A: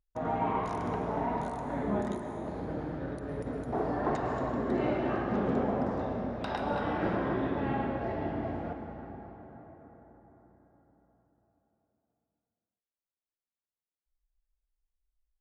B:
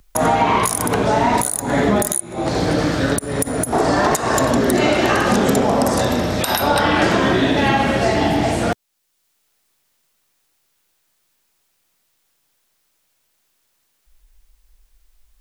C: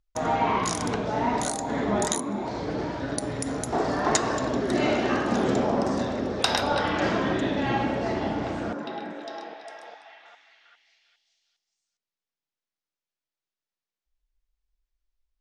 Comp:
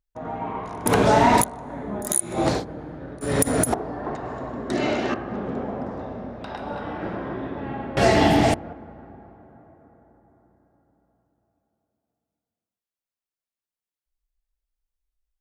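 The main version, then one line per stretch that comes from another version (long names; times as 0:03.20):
A
0:00.86–0:01.44: punch in from B
0:02.09–0:02.57: punch in from B, crossfade 0.16 s
0:03.21–0:03.74: punch in from B
0:04.70–0:05.14: punch in from C
0:07.97–0:08.54: punch in from B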